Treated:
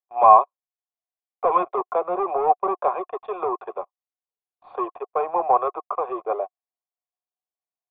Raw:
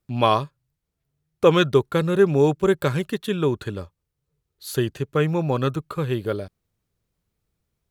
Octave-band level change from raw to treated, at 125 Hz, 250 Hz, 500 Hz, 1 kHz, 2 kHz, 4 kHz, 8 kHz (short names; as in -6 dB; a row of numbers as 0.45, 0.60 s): under -30 dB, -13.0 dB, -3.5 dB, +9.0 dB, -13.0 dB, under -25 dB, under -35 dB